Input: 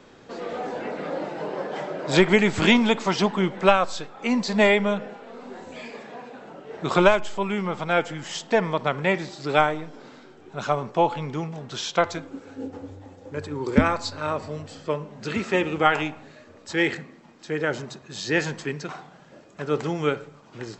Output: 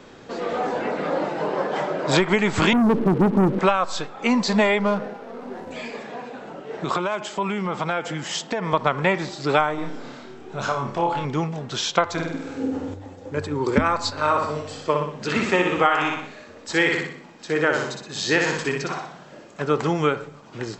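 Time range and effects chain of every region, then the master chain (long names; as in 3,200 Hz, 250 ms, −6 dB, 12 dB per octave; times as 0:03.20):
0:02.73–0:03.59: inverse Chebyshev low-pass filter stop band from 2,700 Hz, stop band 80 dB + leveller curve on the samples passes 3
0:04.79–0:05.71: running median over 15 samples + high-shelf EQ 7,000 Hz −11 dB
0:06.63–0:08.73: high-pass filter 100 Hz + downward compressor 16 to 1, threshold −26 dBFS
0:09.75–0:11.25: downward compressor 3 to 1, threshold −30 dBFS + flutter between parallel walls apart 5 metres, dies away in 0.4 s
0:12.13–0:12.94: flutter between parallel walls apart 8.4 metres, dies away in 0.92 s + one half of a high-frequency compander encoder only
0:14.11–0:19.61: low-shelf EQ 190 Hz −6.5 dB + repeating echo 61 ms, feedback 47%, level −4 dB
whole clip: dynamic equaliser 1,100 Hz, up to +6 dB, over −39 dBFS, Q 1.8; downward compressor 6 to 1, threshold −20 dBFS; level +5 dB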